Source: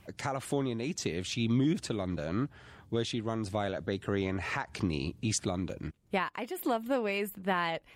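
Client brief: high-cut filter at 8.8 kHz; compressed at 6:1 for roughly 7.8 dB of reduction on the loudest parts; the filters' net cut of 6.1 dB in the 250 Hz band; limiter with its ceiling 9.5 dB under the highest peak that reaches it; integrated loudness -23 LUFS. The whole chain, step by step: low-pass 8.8 kHz; peaking EQ 250 Hz -8 dB; compression 6:1, threshold -36 dBFS; trim +21.5 dB; peak limiter -11.5 dBFS

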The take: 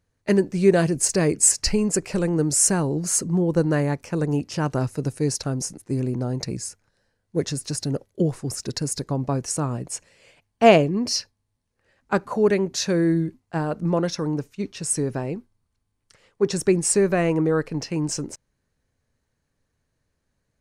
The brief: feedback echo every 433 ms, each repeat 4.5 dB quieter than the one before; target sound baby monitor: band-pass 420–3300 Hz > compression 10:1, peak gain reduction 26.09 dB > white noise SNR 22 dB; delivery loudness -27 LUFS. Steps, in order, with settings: band-pass 420–3300 Hz; feedback delay 433 ms, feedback 60%, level -4.5 dB; compression 10:1, threshold -36 dBFS; white noise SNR 22 dB; trim +13.5 dB

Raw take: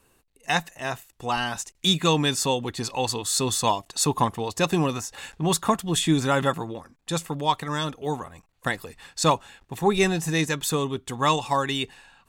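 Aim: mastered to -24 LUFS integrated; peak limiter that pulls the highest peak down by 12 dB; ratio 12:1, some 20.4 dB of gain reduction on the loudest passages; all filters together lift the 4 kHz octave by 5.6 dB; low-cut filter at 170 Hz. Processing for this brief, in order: high-pass 170 Hz; peaking EQ 4 kHz +6.5 dB; compression 12:1, threshold -35 dBFS; trim +16.5 dB; peak limiter -12 dBFS

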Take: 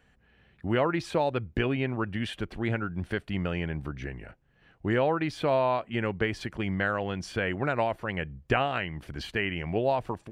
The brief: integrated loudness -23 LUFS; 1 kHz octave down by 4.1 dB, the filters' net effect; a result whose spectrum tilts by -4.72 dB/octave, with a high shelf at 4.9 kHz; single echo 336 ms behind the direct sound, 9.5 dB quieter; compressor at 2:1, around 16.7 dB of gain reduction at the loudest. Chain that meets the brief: peaking EQ 1 kHz -6 dB; treble shelf 4.9 kHz +6 dB; compression 2:1, threshold -53 dBFS; delay 336 ms -9.5 dB; trim +22 dB

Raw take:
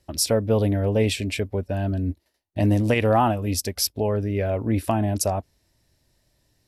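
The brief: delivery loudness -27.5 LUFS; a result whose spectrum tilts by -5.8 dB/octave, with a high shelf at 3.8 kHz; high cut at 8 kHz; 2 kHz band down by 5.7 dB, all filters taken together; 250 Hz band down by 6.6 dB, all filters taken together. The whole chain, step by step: low-pass 8 kHz; peaking EQ 250 Hz -8.5 dB; peaking EQ 2 kHz -6 dB; treble shelf 3.8 kHz -4 dB; trim -1.5 dB

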